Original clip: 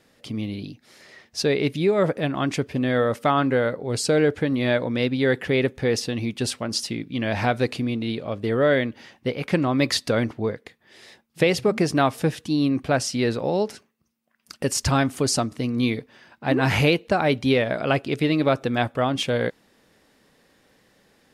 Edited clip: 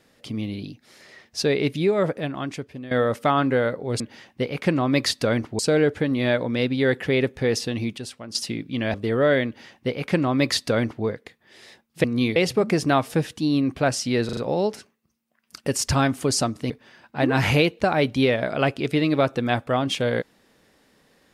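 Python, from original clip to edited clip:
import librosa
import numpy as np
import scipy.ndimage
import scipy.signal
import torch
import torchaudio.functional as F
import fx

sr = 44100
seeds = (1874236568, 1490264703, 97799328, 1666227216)

y = fx.edit(x, sr, fx.fade_out_to(start_s=1.82, length_s=1.09, floor_db=-15.5),
    fx.clip_gain(start_s=6.39, length_s=0.37, db=-9.5),
    fx.cut(start_s=7.35, length_s=0.99),
    fx.duplicate(start_s=8.86, length_s=1.59, to_s=4.0),
    fx.stutter(start_s=13.33, slice_s=0.04, count=4),
    fx.move(start_s=15.66, length_s=0.32, to_s=11.44), tone=tone)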